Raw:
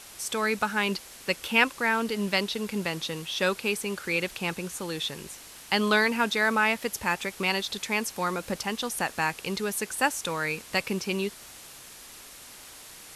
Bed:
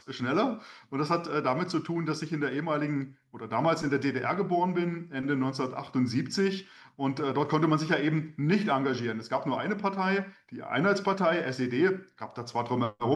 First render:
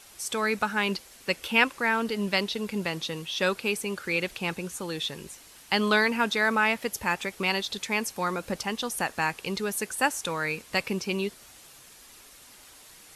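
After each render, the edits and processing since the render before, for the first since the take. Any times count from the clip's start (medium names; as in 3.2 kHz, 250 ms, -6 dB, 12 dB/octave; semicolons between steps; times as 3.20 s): noise reduction 6 dB, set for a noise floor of -47 dBFS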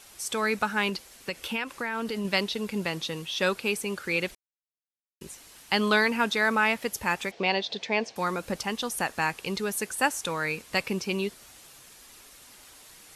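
0.89–2.25 s: compression 5:1, threshold -27 dBFS; 4.35–5.21 s: mute; 7.31–8.16 s: cabinet simulation 150–5100 Hz, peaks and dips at 480 Hz +6 dB, 680 Hz +10 dB, 1.3 kHz -8 dB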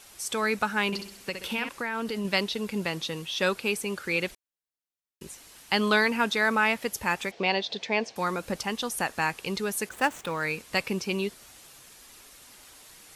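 0.86–1.69 s: flutter echo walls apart 11.1 m, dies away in 0.56 s; 9.89–10.43 s: median filter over 9 samples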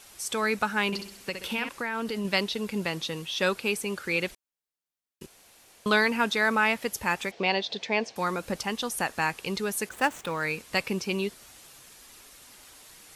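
5.26–5.86 s: room tone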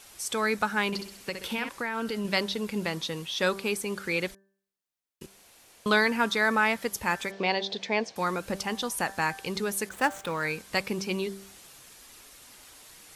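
de-hum 195.3 Hz, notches 9; dynamic bell 2.7 kHz, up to -6 dB, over -46 dBFS, Q 6.8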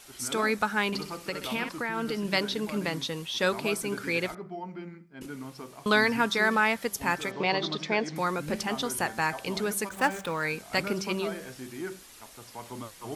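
add bed -12 dB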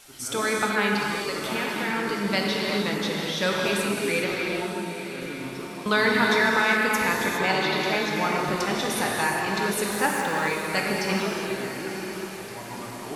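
echo that smears into a reverb 939 ms, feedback 45%, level -10 dB; gated-style reverb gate 440 ms flat, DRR -2 dB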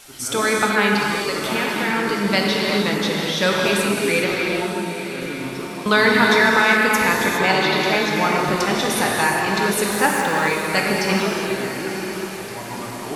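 trim +6 dB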